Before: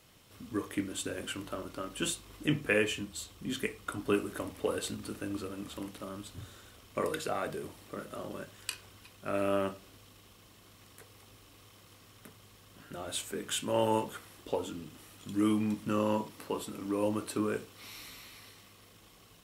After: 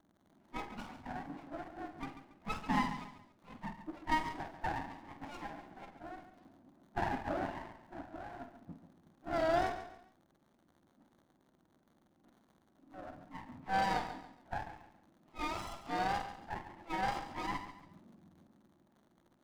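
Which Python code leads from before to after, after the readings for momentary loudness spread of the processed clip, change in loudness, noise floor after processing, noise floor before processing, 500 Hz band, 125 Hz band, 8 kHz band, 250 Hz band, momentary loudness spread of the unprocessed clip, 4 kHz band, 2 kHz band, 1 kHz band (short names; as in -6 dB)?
18 LU, -4.5 dB, -72 dBFS, -59 dBFS, -8.5 dB, -6.5 dB, -17.5 dB, -9.0 dB, 19 LU, -9.0 dB, -3.0 dB, +3.0 dB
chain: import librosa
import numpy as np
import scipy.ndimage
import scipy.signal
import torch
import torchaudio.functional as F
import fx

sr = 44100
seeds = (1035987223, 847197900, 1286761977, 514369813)

p1 = fx.octave_mirror(x, sr, pivot_hz=640.0)
p2 = fx.weighting(p1, sr, curve='A')
p3 = fx.env_lowpass(p2, sr, base_hz=440.0, full_db=-28.0)
p4 = fx.rider(p3, sr, range_db=4, speed_s=2.0)
p5 = p3 + F.gain(torch.from_numpy(p4), 0.5).numpy()
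p6 = fx.dmg_crackle(p5, sr, seeds[0], per_s=150.0, level_db=-56.0)
p7 = fx.wow_flutter(p6, sr, seeds[1], rate_hz=2.1, depth_cents=120.0)
p8 = fx.fixed_phaser(p7, sr, hz=440.0, stages=6)
p9 = fx.doubler(p8, sr, ms=48.0, db=-9)
p10 = fx.echo_feedback(p9, sr, ms=140, feedback_pct=33, wet_db=-11.5)
p11 = fx.running_max(p10, sr, window=17)
y = F.gain(torch.from_numpy(p11), -3.0).numpy()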